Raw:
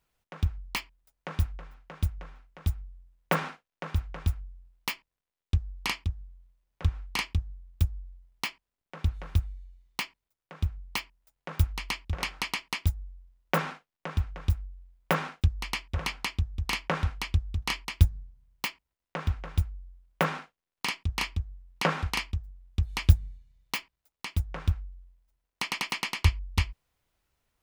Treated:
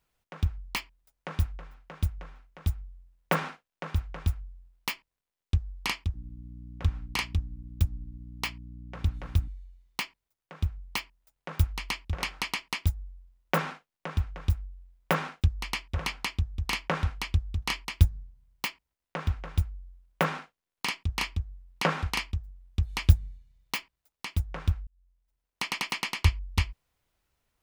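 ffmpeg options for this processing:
-filter_complex "[0:a]asettb=1/sr,asplit=3[a][b][c];[a]atrim=end=6.144[d];[b]atrim=start=6.14:end=9.48,asetpts=PTS-STARTPTS,afade=t=in:d=0.004:c=qsin,afade=t=out:st=3.336:d=0.004:c=qsin,aeval=exprs='val(0)+0.00794*(sin(2*PI*60*n/s)+sin(2*PI*2*60*n/s)/2+sin(2*PI*3*60*n/s)/3+sin(2*PI*4*60*n/s)/4+sin(2*PI*5*60*n/s)/5)':c=same[e];[c]atrim=start=9.476[f];[d][e]acrossfade=d=0.004:c1=hsin:c2=qsin[g];[g][f]acrossfade=d=0.004:c1=qsin:c2=hsin,asplit=2[h][i];[h]atrim=end=24.87,asetpts=PTS-STARTPTS,afade=t=out:st=24.866:d=0.004:c=hsin[j];[i]atrim=start=24.87,asetpts=PTS-STARTPTS,afade=t=in:d=0.77[k];[j][k]concat=n=2:v=0:a=1"

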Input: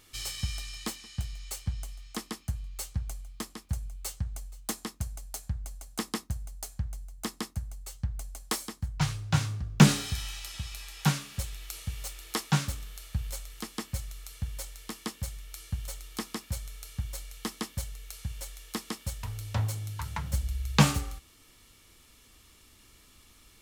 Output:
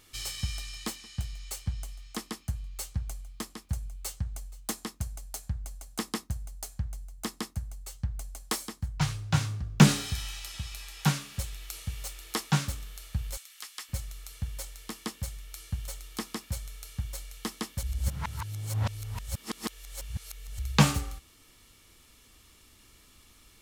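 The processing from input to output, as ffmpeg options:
-filter_complex "[0:a]asettb=1/sr,asplit=3[a][b][c];[a]atrim=end=13.374[d];[b]atrim=start=13.37:end=13.89,asetpts=PTS-STARTPTS,afade=t=in:d=0.004:c=qsin,afade=t=out:st=0.516:d=0.004:c=qsin,highpass=1.5k[e];[c]atrim=start=13.886[f];[d][e]acrossfade=d=0.004:c1=hsin:c2=qsin[g];[g][f]acrossfade=d=0.004:c1=qsin:c2=hsin,asplit=3[h][i][j];[h]atrim=end=17.832[k];[i]atrim=start=17.828:end=20.592,asetpts=PTS-STARTPTS,areverse[l];[j]atrim=start=20.588[m];[k][l]acrossfade=d=0.004:c1=hsin:c2=hsin[n];[n][m]acrossfade=d=0.004:c1=hsin:c2=hsin"

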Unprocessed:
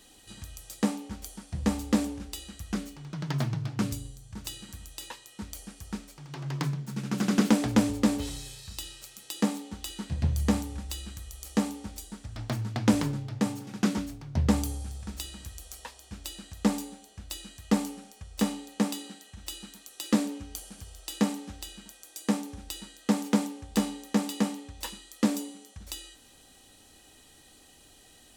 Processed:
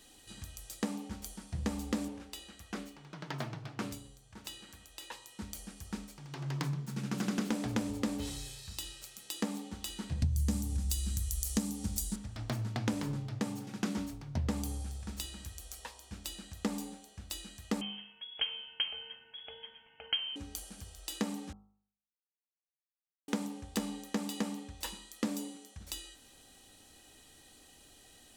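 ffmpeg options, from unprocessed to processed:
-filter_complex "[0:a]asettb=1/sr,asplit=3[a][b][c];[a]atrim=end=2.084[d];[b]atrim=start=2.08:end=5.12,asetpts=PTS-STARTPTS,afade=t=in:d=0.004:c=qsin,afade=t=out:st=3.036:d=0.004:c=qsin,bass=f=250:g=-11,treble=f=4k:g=-6[e];[c]atrim=start=5.116[f];[d][e]acrossfade=d=0.004:c1=hsin:c2=qsin[g];[g][f]acrossfade=d=0.004:c1=qsin:c2=hsin,asettb=1/sr,asplit=3[h][i][j];[h]atrim=end=10.224[k];[i]atrim=start=10.22:end=12.16,asetpts=PTS-STARTPTS,afade=t=in:d=0.004:c=qsin,afade=t=out:st=1.936:d=0.004:c=qsin,bass=f=250:g=14,treble=f=4k:g=14[l];[j]atrim=start=12.156[m];[k][l]acrossfade=d=0.004:c1=hsin:c2=qsin[n];[n][m]acrossfade=d=0.004:c1=qsin:c2=hsin,asettb=1/sr,asplit=3[o][p][q];[o]atrim=end=17.814[r];[p]atrim=start=17.81:end=20.36,asetpts=PTS-STARTPTS,afade=t=in:d=0.004:c=qsin,afade=t=out:st=2.546:d=0.004:c=qsin,lowpass=f=2.9k:t=q:w=0.5098,lowpass=f=2.9k:t=q:w=0.6013,lowpass=f=2.9k:t=q:w=0.9,lowpass=f=2.9k:t=q:w=2.563,afreqshift=-3400[s];[q]atrim=start=20.356[t];[r][s]acrossfade=d=0.004:c1=hsin:c2=qsin[u];[u][t]acrossfade=d=0.004:c1=qsin:c2=hsin,asplit=3[v][w][x];[v]atrim=end=21.53,asetpts=PTS-STARTPTS,afade=t=out:st=21.526:d=0.004:c=hsin[y];[w]atrim=start=21.53:end=23.28,asetpts=PTS-STARTPTS,volume=0[z];[x]atrim=start=23.28,asetpts=PTS-STARTPTS,afade=t=in:d=0.004:c=hsin[aa];[y][z][aa]concat=n=3:v=0:a=1,bandreject=f=51.13:t=h:w=4,bandreject=f=102.26:t=h:w=4,bandreject=f=153.39:t=h:w=4,bandreject=f=204.52:t=h:w=4,bandreject=f=255.65:t=h:w=4,bandreject=f=306.78:t=h:w=4,bandreject=f=357.91:t=h:w=4,bandreject=f=409.04:t=h:w=4,bandreject=f=460.17:t=h:w=4,bandreject=f=511.3:t=h:w=4,bandreject=f=562.43:t=h:w=4,bandreject=f=613.56:t=h:w=4,bandreject=f=664.69:t=h:w=4,bandreject=f=715.82:t=h:w=4,bandreject=f=766.95:t=h:w=4,bandreject=f=818.08:t=h:w=4,bandreject=f=869.21:t=h:w=4,bandreject=f=920.34:t=h:w=4,bandreject=f=971.47:t=h:w=4,bandreject=f=1.0226k:t=h:w=4,bandreject=f=1.07373k:t=h:w=4,bandreject=f=1.12486k:t=h:w=4,bandreject=f=1.17599k:t=h:w=4,bandreject=f=1.22712k:t=h:w=4,bandreject=f=1.27825k:t=h:w=4,bandreject=f=1.32938k:t=h:w=4,acompressor=threshold=-28dB:ratio=4,volume=-2.5dB"

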